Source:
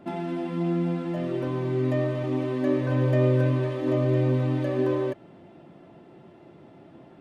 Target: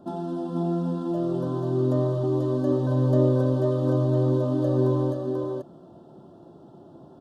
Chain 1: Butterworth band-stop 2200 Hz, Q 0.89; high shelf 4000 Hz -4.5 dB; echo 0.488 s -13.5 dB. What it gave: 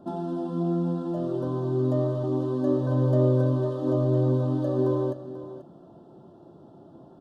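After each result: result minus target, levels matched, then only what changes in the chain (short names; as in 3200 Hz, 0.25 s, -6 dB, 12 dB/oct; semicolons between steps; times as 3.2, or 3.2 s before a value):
echo-to-direct -10 dB; 8000 Hz band -3.5 dB
change: echo 0.488 s -3.5 dB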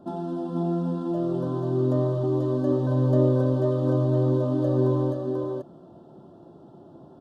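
8000 Hz band -3.5 dB
remove: high shelf 4000 Hz -4.5 dB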